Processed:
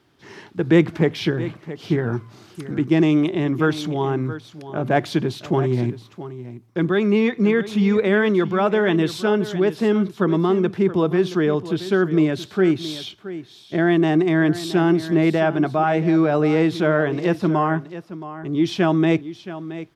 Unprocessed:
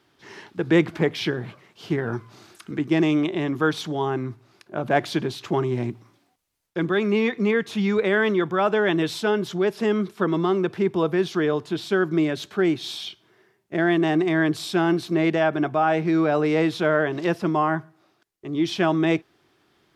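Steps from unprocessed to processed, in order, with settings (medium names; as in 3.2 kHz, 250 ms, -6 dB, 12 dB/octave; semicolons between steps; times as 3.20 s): bass shelf 320 Hz +7 dB; delay 673 ms -14 dB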